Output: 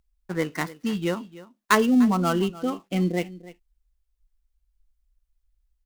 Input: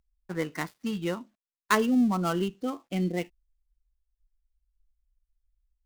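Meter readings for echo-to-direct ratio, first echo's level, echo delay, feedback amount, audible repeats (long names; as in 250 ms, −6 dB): −18.0 dB, −18.0 dB, 298 ms, repeats not evenly spaced, 1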